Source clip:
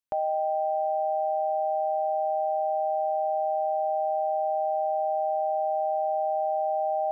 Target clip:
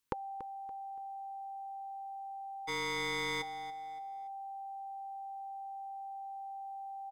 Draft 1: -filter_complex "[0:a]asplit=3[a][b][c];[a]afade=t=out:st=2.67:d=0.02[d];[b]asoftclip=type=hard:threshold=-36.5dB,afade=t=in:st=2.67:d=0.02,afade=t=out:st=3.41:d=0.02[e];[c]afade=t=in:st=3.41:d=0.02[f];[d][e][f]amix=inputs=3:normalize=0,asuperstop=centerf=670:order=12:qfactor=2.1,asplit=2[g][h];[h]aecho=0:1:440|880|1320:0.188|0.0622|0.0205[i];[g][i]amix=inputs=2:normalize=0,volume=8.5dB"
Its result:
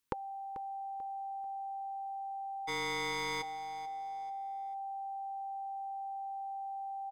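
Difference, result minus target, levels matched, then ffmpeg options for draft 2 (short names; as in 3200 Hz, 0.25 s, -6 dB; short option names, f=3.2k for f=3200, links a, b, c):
echo 0.155 s late
-filter_complex "[0:a]asplit=3[a][b][c];[a]afade=t=out:st=2.67:d=0.02[d];[b]asoftclip=type=hard:threshold=-36.5dB,afade=t=in:st=2.67:d=0.02,afade=t=out:st=3.41:d=0.02[e];[c]afade=t=in:st=3.41:d=0.02[f];[d][e][f]amix=inputs=3:normalize=0,asuperstop=centerf=670:order=12:qfactor=2.1,asplit=2[g][h];[h]aecho=0:1:285|570|855:0.188|0.0622|0.0205[i];[g][i]amix=inputs=2:normalize=0,volume=8.5dB"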